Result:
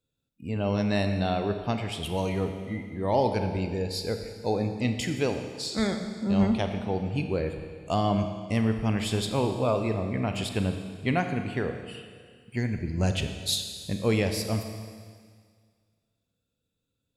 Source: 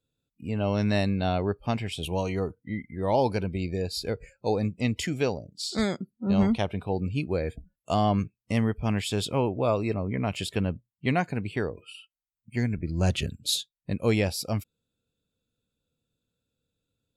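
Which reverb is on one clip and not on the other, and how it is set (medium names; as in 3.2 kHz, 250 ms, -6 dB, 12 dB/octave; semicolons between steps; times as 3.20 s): Schroeder reverb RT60 1.9 s, combs from 28 ms, DRR 6 dB; trim -1 dB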